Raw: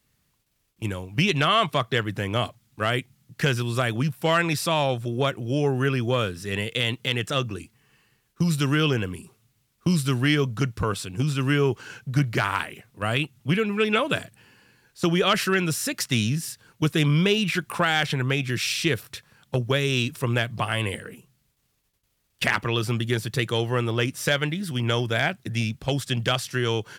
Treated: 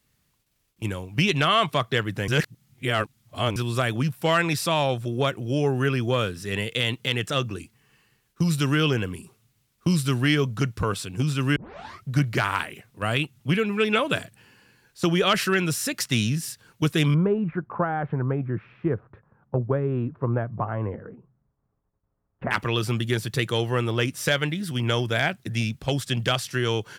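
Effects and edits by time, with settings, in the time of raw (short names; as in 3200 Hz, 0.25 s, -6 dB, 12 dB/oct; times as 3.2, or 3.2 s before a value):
2.28–3.56 reverse
11.56 tape start 0.52 s
17.14–22.51 LPF 1200 Hz 24 dB/oct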